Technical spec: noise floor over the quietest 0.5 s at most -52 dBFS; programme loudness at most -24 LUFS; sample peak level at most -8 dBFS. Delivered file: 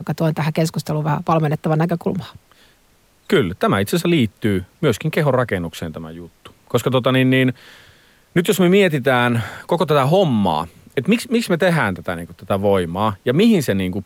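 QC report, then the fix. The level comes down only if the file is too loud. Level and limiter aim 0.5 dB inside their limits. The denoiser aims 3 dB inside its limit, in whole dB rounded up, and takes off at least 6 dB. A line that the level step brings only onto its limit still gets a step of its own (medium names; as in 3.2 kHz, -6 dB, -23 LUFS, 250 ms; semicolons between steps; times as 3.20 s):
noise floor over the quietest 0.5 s -56 dBFS: pass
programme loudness -18.0 LUFS: fail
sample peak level -5.0 dBFS: fail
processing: trim -6.5 dB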